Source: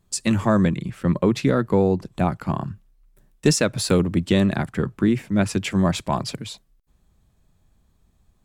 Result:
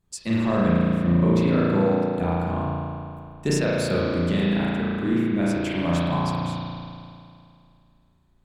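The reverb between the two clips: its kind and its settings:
spring reverb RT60 2.4 s, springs 35 ms, chirp 20 ms, DRR −7.5 dB
level −9 dB

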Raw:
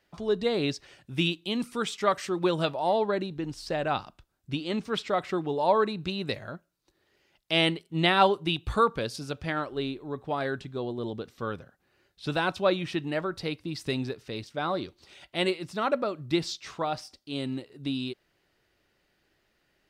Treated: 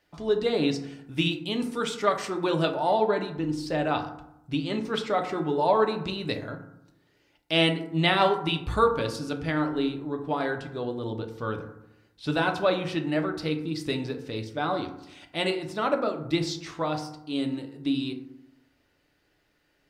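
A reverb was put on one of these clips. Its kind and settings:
feedback delay network reverb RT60 0.81 s, low-frequency decay 1.25×, high-frequency decay 0.4×, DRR 4 dB

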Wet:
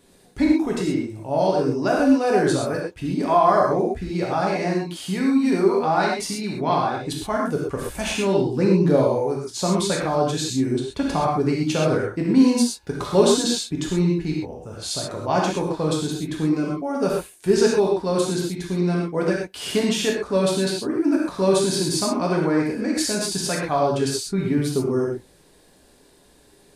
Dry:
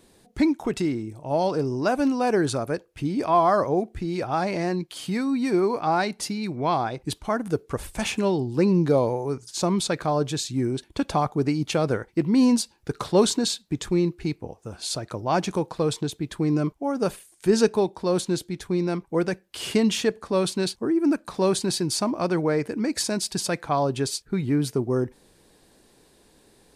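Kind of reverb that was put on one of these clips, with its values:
reverb whose tail is shaped and stops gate 150 ms flat, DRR −3 dB
level −1.5 dB

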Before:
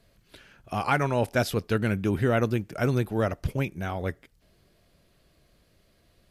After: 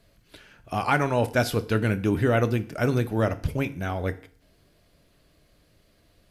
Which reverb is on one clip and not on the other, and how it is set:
feedback delay network reverb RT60 0.51 s, low-frequency decay 1×, high-frequency decay 0.9×, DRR 10.5 dB
level +1.5 dB

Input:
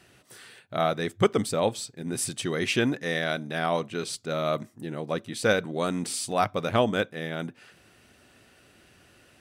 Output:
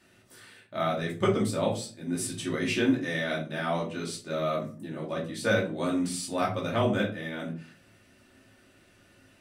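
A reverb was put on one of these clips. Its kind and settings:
rectangular room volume 240 cubic metres, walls furnished, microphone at 2.6 metres
level −8 dB

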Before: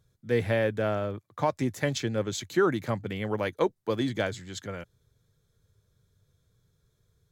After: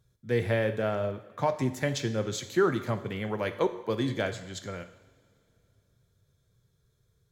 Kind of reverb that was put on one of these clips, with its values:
coupled-rooms reverb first 0.79 s, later 3.1 s, from −19 dB, DRR 8 dB
level −1.5 dB

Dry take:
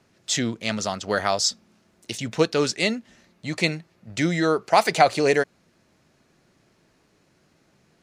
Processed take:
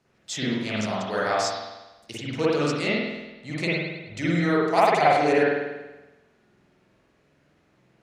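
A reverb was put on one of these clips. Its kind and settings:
spring reverb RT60 1.1 s, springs 47 ms, chirp 60 ms, DRR −8 dB
level −9 dB

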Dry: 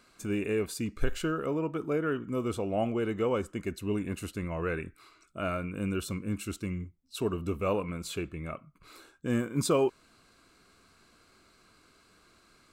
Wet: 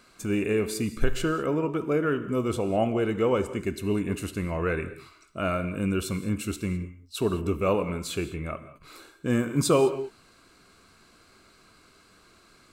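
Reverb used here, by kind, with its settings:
reverb whose tail is shaped and stops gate 230 ms flat, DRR 11.5 dB
level +4.5 dB

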